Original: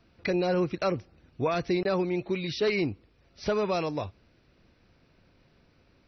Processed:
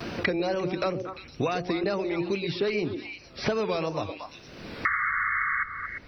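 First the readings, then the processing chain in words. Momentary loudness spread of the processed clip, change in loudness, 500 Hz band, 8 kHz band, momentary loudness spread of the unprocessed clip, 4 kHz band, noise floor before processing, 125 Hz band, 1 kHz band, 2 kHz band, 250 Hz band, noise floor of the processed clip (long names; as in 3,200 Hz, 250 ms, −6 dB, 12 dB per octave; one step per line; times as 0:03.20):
13 LU, +0.5 dB, 0.0 dB, can't be measured, 10 LU, +2.0 dB, −64 dBFS, −1.0 dB, +4.0 dB, +9.5 dB, 0.0 dB, −49 dBFS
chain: mains-hum notches 60/120/180/240/300/360 Hz
tape wow and flutter 90 cents
sound drawn into the spectrogram noise, 0:04.85–0:05.64, 1,100–2,200 Hz −28 dBFS
on a send: echo through a band-pass that steps 115 ms, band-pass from 400 Hz, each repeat 1.4 octaves, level −7 dB
on the sum: multiband upward and downward compressor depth 100%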